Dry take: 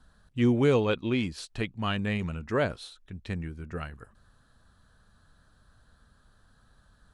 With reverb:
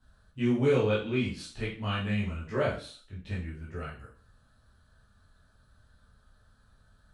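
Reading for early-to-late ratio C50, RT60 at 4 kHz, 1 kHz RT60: 5.5 dB, 0.40 s, 0.45 s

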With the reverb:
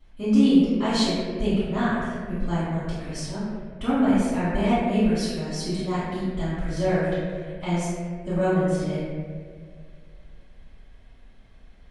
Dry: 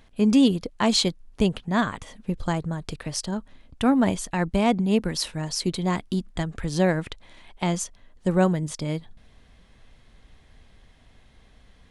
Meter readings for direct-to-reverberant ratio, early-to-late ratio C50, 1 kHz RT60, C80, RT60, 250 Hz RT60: -18.0 dB, -3.5 dB, 1.6 s, -1.0 dB, 2.0 s, 2.1 s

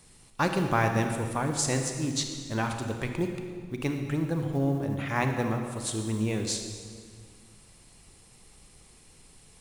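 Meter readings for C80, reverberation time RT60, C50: 6.5 dB, 1.9 s, 5.5 dB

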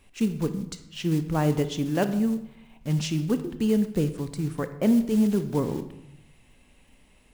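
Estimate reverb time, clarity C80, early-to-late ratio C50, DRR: 0.90 s, 14.0 dB, 11.5 dB, 10.0 dB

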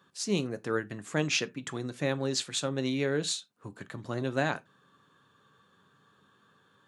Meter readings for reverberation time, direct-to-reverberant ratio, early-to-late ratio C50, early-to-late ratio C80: not exponential, 11.0 dB, 24.5 dB, 33.0 dB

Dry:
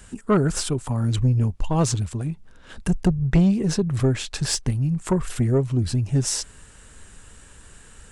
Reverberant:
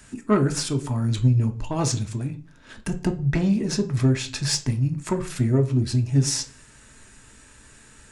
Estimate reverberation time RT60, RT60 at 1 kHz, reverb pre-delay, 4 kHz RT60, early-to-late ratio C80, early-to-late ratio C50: 0.40 s, 0.40 s, 3 ms, 0.45 s, 20.5 dB, 15.5 dB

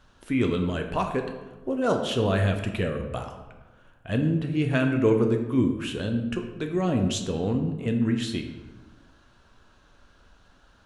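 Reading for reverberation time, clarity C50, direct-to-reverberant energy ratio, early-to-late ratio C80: 1.2 s, 7.0 dB, 3.5 dB, 9.0 dB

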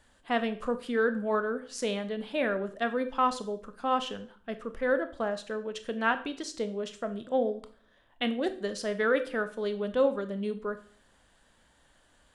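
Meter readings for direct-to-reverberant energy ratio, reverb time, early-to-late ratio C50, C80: 10.0 dB, 0.50 s, 14.0 dB, 18.0 dB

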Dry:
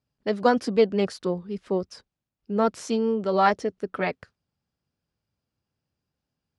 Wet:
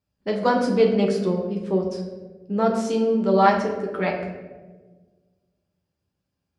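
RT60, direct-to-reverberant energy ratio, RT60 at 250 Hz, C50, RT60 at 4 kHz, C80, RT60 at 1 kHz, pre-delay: 1.4 s, -0.5 dB, 1.9 s, 5.5 dB, 0.70 s, 7.5 dB, 1.1 s, 5 ms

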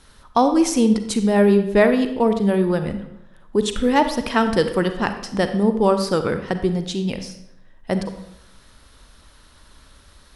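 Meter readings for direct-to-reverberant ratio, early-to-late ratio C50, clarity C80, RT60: 8.0 dB, 9.5 dB, 11.5 dB, 0.80 s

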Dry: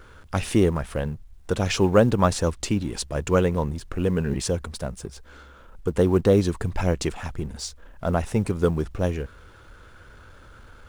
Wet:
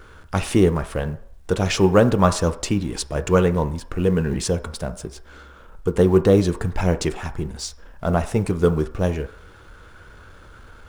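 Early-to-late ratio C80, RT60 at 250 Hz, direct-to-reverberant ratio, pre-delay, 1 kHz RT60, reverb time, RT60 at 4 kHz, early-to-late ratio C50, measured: 18.0 dB, 0.40 s, 9.0 dB, 3 ms, 0.65 s, 0.65 s, 0.60 s, 15.0 dB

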